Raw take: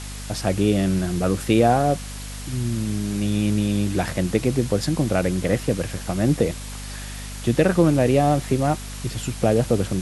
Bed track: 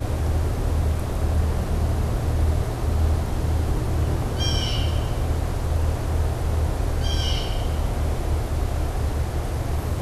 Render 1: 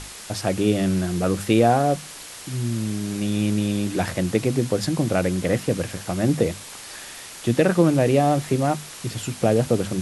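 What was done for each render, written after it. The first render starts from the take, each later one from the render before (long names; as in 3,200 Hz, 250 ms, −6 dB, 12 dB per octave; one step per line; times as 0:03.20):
mains-hum notches 50/100/150/200/250 Hz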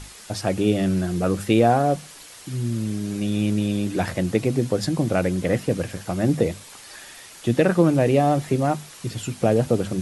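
broadband denoise 6 dB, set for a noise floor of −39 dBFS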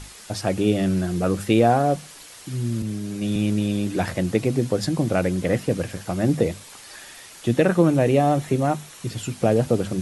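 0:02.82–0:03.36: multiband upward and downward expander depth 70%
0:07.54–0:09.08: notch filter 4,800 Hz, Q 10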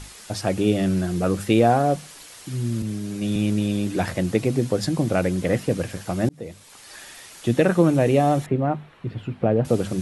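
0:06.29–0:07.00: fade in
0:08.46–0:09.65: high-frequency loss of the air 500 metres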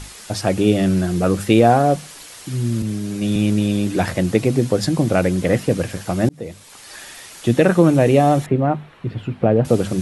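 level +4.5 dB
brickwall limiter −1 dBFS, peak gain reduction 1 dB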